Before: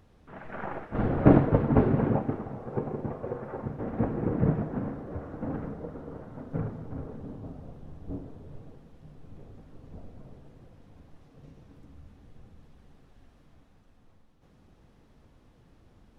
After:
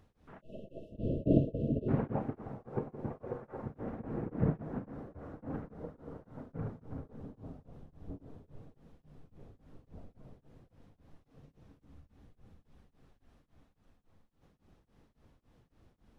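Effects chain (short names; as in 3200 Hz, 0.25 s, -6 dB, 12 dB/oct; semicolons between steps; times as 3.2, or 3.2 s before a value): spectral delete 0.41–1.89, 670–2600 Hz; beating tremolo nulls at 3.6 Hz; gain -4.5 dB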